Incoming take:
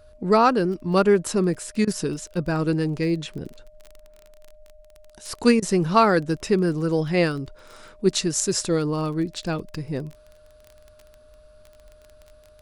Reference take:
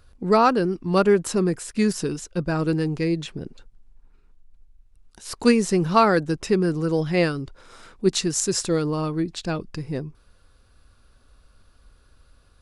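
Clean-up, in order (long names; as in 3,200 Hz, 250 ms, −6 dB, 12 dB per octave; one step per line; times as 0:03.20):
click removal
notch filter 610 Hz, Q 30
repair the gap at 0:01.85/0:05.60, 22 ms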